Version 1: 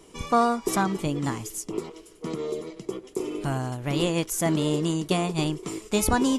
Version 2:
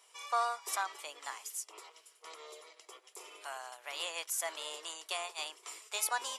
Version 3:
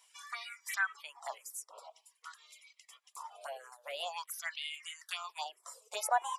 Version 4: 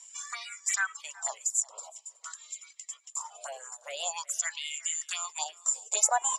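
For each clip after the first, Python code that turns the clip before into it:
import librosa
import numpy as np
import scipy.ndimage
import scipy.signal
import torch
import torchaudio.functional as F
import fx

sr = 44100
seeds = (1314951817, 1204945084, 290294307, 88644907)

y1 = scipy.signal.sosfilt(scipy.signal.bessel(6, 1000.0, 'highpass', norm='mag', fs=sr, output='sos'), x)
y1 = fx.notch(y1, sr, hz=6500.0, q=26.0)
y1 = y1 * 10.0 ** (-5.5 / 20.0)
y2 = fx.filter_lfo_highpass(y1, sr, shape='sine', hz=0.47, low_hz=500.0, high_hz=2200.0, q=7.9)
y2 = fx.env_phaser(y2, sr, low_hz=190.0, high_hz=4800.0, full_db=-28.0)
y2 = fx.dereverb_blind(y2, sr, rt60_s=1.0)
y2 = y2 * 10.0 ** (-1.0 / 20.0)
y3 = fx.lowpass_res(y2, sr, hz=7200.0, q=15.0)
y3 = y3 + 10.0 ** (-21.5 / 20.0) * np.pad(y3, (int(370 * sr / 1000.0), 0))[:len(y3)]
y3 = y3 * 10.0 ** (2.0 / 20.0)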